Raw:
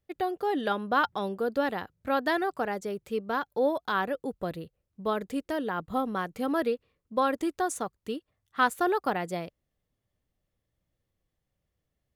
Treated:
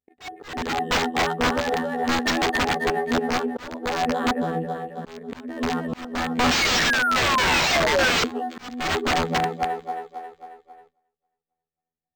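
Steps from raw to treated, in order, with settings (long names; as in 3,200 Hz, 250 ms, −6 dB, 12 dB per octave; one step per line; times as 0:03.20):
adaptive Wiener filter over 9 samples
phases set to zero 82.3 Hz
on a send: echo with a time of its own for lows and highs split 380 Hz, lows 114 ms, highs 270 ms, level −5 dB
on the sum: sound drawn into the spectrogram fall, 0:06.51–0:08.23, 430–2,500 Hz −21 dBFS
low-shelf EQ 110 Hz +2 dB
in parallel at −1.5 dB: downward compressor 16 to 1, threshold −33 dBFS, peak gain reduction 16 dB
on the sum: parametric band 9,900 Hz +13 dB 2.1 octaves
noise gate with hold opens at −47 dBFS
hollow resonant body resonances 240/440/750/1,800 Hz, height 17 dB, ringing for 65 ms
wrap-around overflow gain 11.5 dB
volume swells 464 ms
linearly interpolated sample-rate reduction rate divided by 4×
level −3 dB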